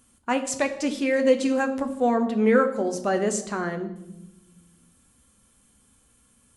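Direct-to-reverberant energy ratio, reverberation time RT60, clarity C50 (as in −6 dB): 6.0 dB, 0.95 s, 11.5 dB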